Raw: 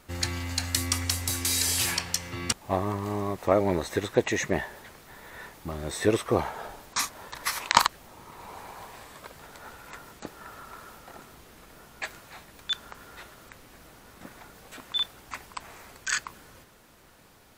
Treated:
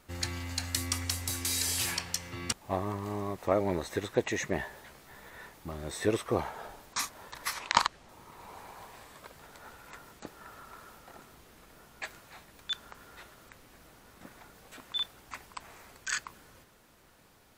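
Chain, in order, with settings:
0:04.58–0:05.29: double-tracking delay 15 ms −5 dB
0:07.53–0:08.09: low-pass filter 7,300 Hz 12 dB per octave
level −5 dB

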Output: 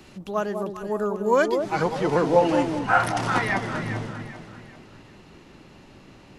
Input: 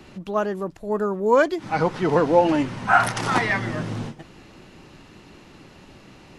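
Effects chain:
high-shelf EQ 4,700 Hz +7.5 dB, from 0:02.79 −2 dB
delay that swaps between a low-pass and a high-pass 198 ms, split 940 Hz, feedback 61%, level −5 dB
level −3 dB

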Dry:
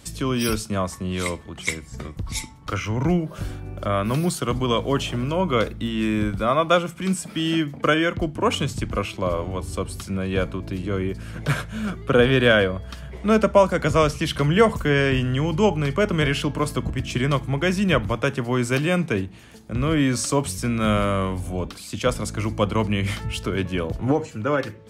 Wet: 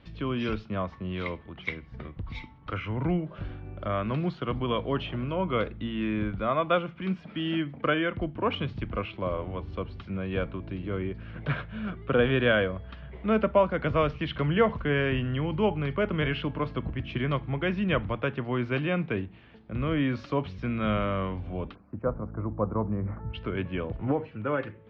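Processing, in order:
inverse Chebyshev low-pass filter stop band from 7,800 Hz, stop band 50 dB, from 0:21.74 stop band from 3,200 Hz, from 0:23.33 stop band from 7,100 Hz
level −6.5 dB

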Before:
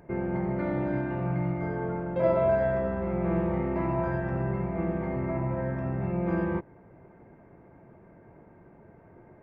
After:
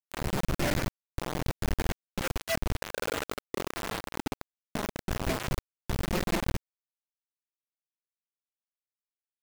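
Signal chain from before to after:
variable-slope delta modulation 64 kbit/s
reverb reduction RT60 1.5 s
0:01.93–0:02.38: time-frequency box erased 610–1,300 Hz
reverb reduction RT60 0.75 s
square-wave tremolo 0.85 Hz, depth 60%, duty 75%
comparator with hysteresis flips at −31.5 dBFS
rotating-speaker cabinet horn 1 Hz, later 6.7 Hz, at 0:01.90
0:02.76–0:05.08: ring modulation 560 Hz → 190 Hz
bit reduction 6 bits
level +7.5 dB

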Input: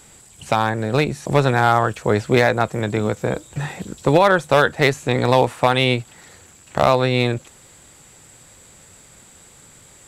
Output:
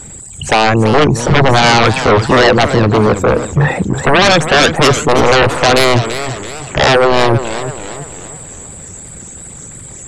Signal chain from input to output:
spectral envelope exaggerated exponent 2
sine wavefolder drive 15 dB, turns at −2 dBFS
feedback echo with a swinging delay time 332 ms, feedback 46%, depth 192 cents, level −10.5 dB
level −3 dB

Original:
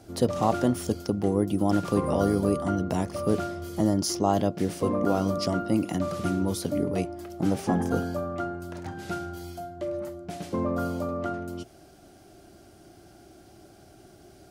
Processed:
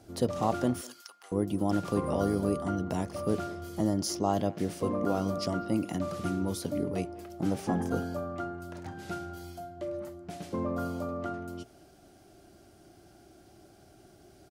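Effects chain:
0:00.81–0:01.32: Chebyshev high-pass filter 1,200 Hz, order 3
far-end echo of a speakerphone 200 ms, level −19 dB
level −4.5 dB

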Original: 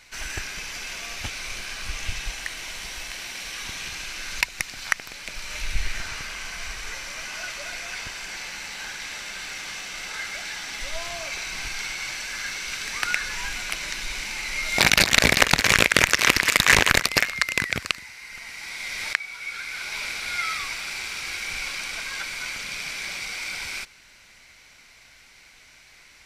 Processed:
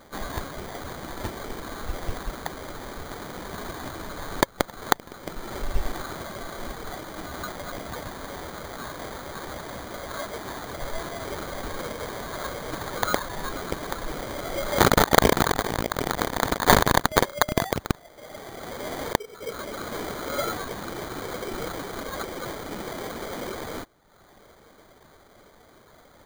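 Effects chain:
reverb reduction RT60 0.94 s
0:15.42–0:16.67: compressor whose output falls as the input rises −28 dBFS, ratio −1
sample-rate reduction 2,700 Hz, jitter 0%
level +1 dB

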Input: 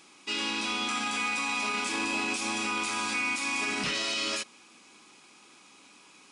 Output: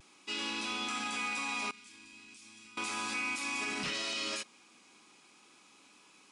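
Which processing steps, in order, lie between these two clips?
0:01.71–0:02.77: guitar amp tone stack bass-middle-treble 6-0-2
pitch vibrato 0.38 Hz 18 cents
level −5.5 dB

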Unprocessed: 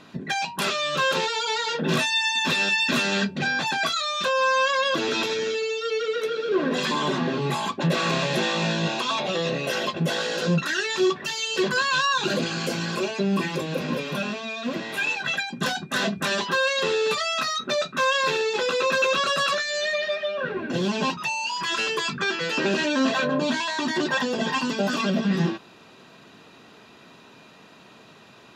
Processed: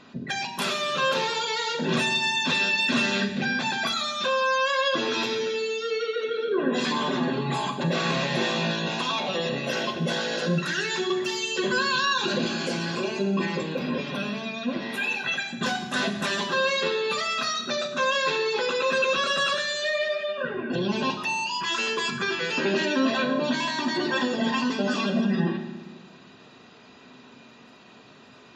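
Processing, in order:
gate on every frequency bin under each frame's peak −30 dB strong
on a send: convolution reverb RT60 1.2 s, pre-delay 4 ms, DRR 5 dB
on the sum: level −2.5 dB

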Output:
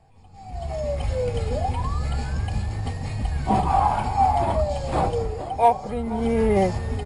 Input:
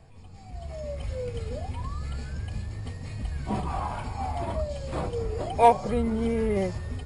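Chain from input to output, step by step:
parametric band 800 Hz +10.5 dB 0.33 octaves
automatic gain control gain up to 13 dB
single-tap delay 485 ms −18 dB
level −5.5 dB

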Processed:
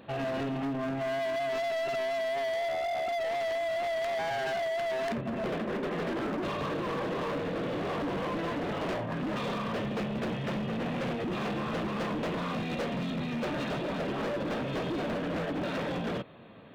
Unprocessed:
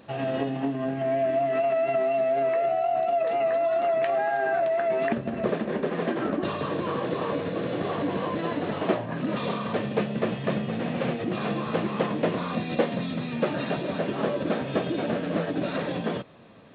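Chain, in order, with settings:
gain into a clipping stage and back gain 30 dB

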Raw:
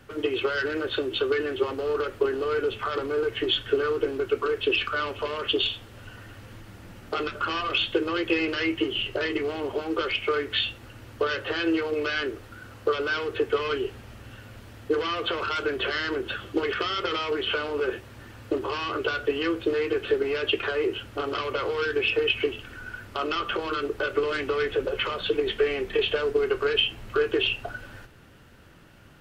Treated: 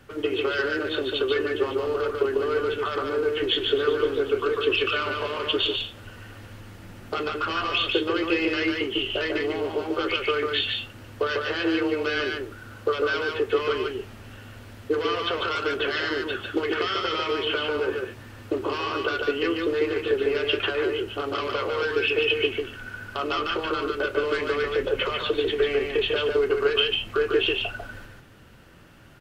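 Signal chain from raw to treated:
single-tap delay 146 ms −3.5 dB
0:03.27–0:05.76: feedback echo with a swinging delay time 125 ms, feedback 79%, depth 149 cents, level −15.5 dB

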